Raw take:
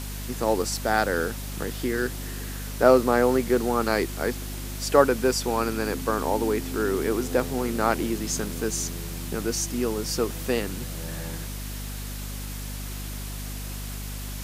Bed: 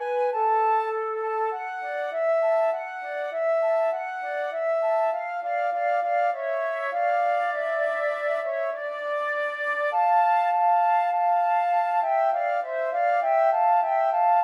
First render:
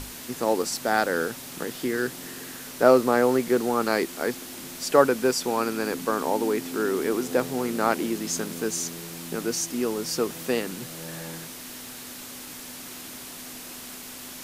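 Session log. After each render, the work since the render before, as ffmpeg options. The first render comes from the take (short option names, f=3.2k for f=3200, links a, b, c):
-af "bandreject=f=50:t=h:w=6,bandreject=f=100:t=h:w=6,bandreject=f=150:t=h:w=6,bandreject=f=200:t=h:w=6"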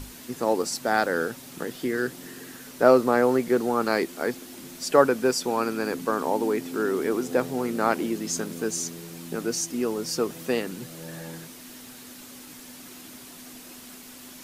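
-af "afftdn=nr=6:nf=-40"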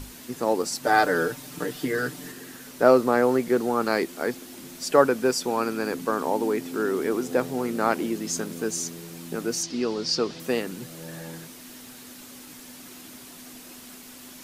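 -filter_complex "[0:a]asettb=1/sr,asplit=3[a][b][c];[a]atrim=end=0.834[d];[b]atrim=start=0.83:end=2.32,asetpts=PTS-STARTPTS,afade=t=in:d=0.004:c=qsin,afade=t=out:st=1.486:d=0.004:c=qsin,aecho=1:1:6.7:0.91,atrim=end_sample=65709[e];[c]atrim=start=2.316[f];[d][e]acrossfade=d=0.004:c1=hsin:c2=qsin[g];[g][f]acrossfade=d=0.004:c1=qsin:c2=hsin,asettb=1/sr,asplit=3[h][i][j];[h]atrim=end=9.634[k];[i]atrim=start=9.63:end=10.4,asetpts=PTS-STARTPTS,afade=t=in:d=0.004:c=qsin,afade=t=out:st=0.766:d=0.004:c=qsin,lowpass=f=4.6k:t=q:w=2.9[l];[j]atrim=start=10.396[m];[k][l]acrossfade=d=0.004:c1=hsin:c2=qsin[n];[n][m]acrossfade=d=0.004:c1=qsin:c2=hsin"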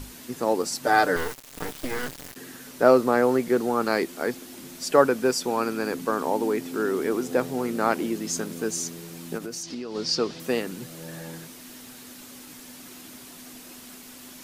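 -filter_complex "[0:a]asettb=1/sr,asplit=3[a][b][c];[a]atrim=end=1.164[d];[b]atrim=start=1.16:end=2.36,asetpts=PTS-STARTPTS,afade=t=in:d=0.004:c=qsin,afade=t=out:st=1.196:d=0.004:c=qsin,acrusher=bits=3:dc=4:mix=0:aa=0.000001[e];[c]atrim=start=2.356[f];[d][e]acrossfade=d=0.004:c1=hsin:c2=qsin[g];[g][f]acrossfade=d=0.004:c1=qsin:c2=hsin,asplit=3[h][i][j];[h]afade=t=out:st=9.37:d=0.02[k];[i]acompressor=threshold=-30dB:ratio=10:attack=3.2:release=140:knee=1:detection=peak,afade=t=in:st=9.37:d=0.02,afade=t=out:st=9.94:d=0.02[l];[j]afade=t=in:st=9.94:d=0.02[m];[k][l][m]amix=inputs=3:normalize=0"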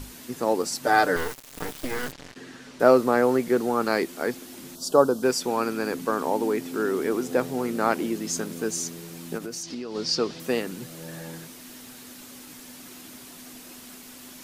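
-filter_complex "[0:a]asettb=1/sr,asplit=3[a][b][c];[a]atrim=end=2.124[d];[b]atrim=start=2.12:end=2.8,asetpts=PTS-STARTPTS,afade=t=in:d=0.004:c=qsin,afade=t=out:st=0.676:d=0.004:c=qsin,lowpass=5.2k[e];[c]atrim=start=2.796[f];[d][e]acrossfade=d=0.004:c1=hsin:c2=qsin[g];[g][f]acrossfade=d=0.004:c1=qsin:c2=hsin,asettb=1/sr,asplit=3[h][i][j];[h]atrim=end=4.754[k];[i]atrim=start=4.75:end=5.23,asetpts=PTS-STARTPTS,afade=t=in:d=0.004:c=qsin,afade=t=out:st=0.476:d=0.004:c=qsin,asuperstop=centerf=2100:order=4:qfactor=0.92[l];[j]atrim=start=5.226[m];[k][l]acrossfade=d=0.004:c1=hsin:c2=qsin[n];[n][m]acrossfade=d=0.004:c1=qsin:c2=hsin"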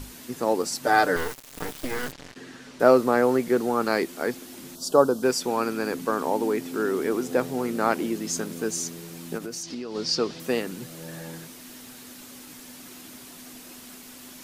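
-af anull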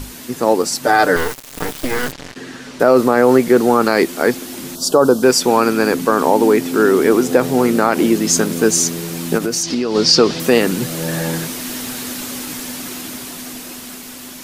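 -af "dynaudnorm=f=600:g=9:m=12dB,alimiter=level_in=9.5dB:limit=-1dB:release=50:level=0:latency=1"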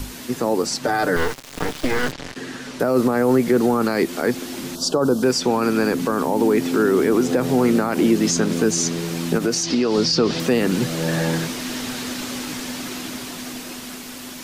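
-filter_complex "[0:a]acrossover=split=240|6900[a][b][c];[b]alimiter=limit=-12dB:level=0:latency=1:release=108[d];[c]acompressor=threshold=-41dB:ratio=6[e];[a][d][e]amix=inputs=3:normalize=0"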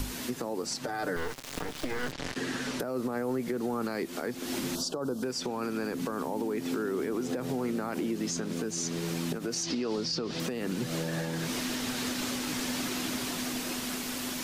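-af "acompressor=threshold=-25dB:ratio=6,alimiter=limit=-22.5dB:level=0:latency=1:release=476"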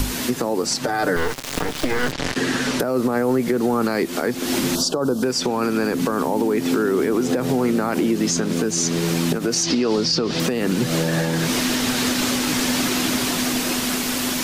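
-af "volume=12dB"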